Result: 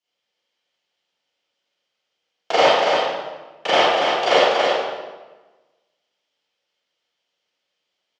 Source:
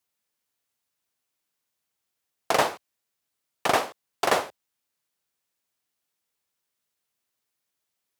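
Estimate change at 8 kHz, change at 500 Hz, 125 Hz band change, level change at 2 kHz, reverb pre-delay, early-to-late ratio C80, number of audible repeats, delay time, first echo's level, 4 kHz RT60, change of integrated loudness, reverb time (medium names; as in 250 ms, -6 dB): -1.0 dB, +11.5 dB, +1.5 dB, +9.0 dB, 28 ms, -2.0 dB, 1, 283 ms, -4.0 dB, 1.0 s, +8.0 dB, 1.3 s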